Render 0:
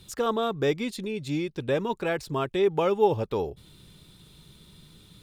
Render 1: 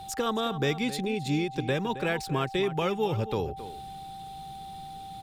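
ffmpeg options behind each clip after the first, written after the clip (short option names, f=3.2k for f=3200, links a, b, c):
-filter_complex "[0:a]acrossover=split=220|1400[a][b][c];[b]acompressor=threshold=-32dB:ratio=6[d];[a][d][c]amix=inputs=3:normalize=0,aeval=exprs='val(0)+0.00708*sin(2*PI*780*n/s)':c=same,asplit=2[e][f];[f]adelay=268.2,volume=-13dB,highshelf=f=4k:g=-6.04[g];[e][g]amix=inputs=2:normalize=0,volume=3dB"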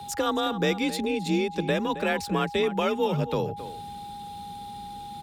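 -af "afreqshift=37,volume=2.5dB"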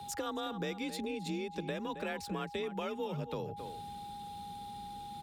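-af "acompressor=threshold=-30dB:ratio=3,volume=-6dB"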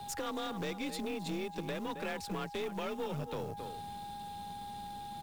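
-af "acrusher=bits=5:mode=log:mix=0:aa=0.000001,aeval=exprs='(tanh(31.6*val(0)+0.75)-tanh(0.75))/31.6':c=same,aeval=exprs='0.0447*sin(PI/2*1.58*val(0)/0.0447)':c=same,volume=-2.5dB"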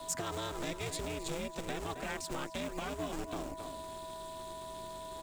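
-filter_complex "[0:a]acrossover=split=310|1000|7600[a][b][c][d];[a]acrusher=samples=36:mix=1:aa=0.000001:lfo=1:lforange=36:lforate=3.9[e];[e][b][c][d]amix=inputs=4:normalize=0,equalizer=f=7.6k:w=2.1:g=9.5,aeval=exprs='val(0)*sin(2*PI*170*n/s)':c=same,volume=2.5dB"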